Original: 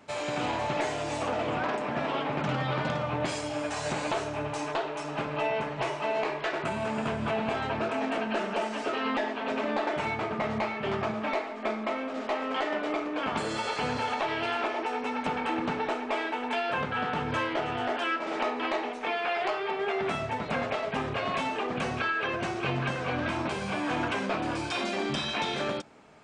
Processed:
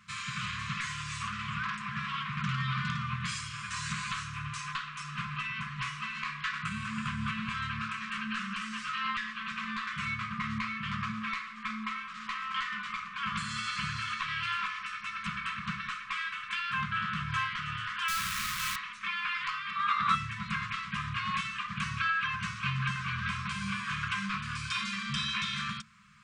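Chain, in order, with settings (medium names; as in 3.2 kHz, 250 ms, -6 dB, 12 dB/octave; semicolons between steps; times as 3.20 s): 18.08–18.76 s: one-bit comparator; 19.74–20.14 s: small resonant body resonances 1.2/3.8 kHz, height 14 dB -> 18 dB, ringing for 20 ms; FFT band-reject 220–1000 Hz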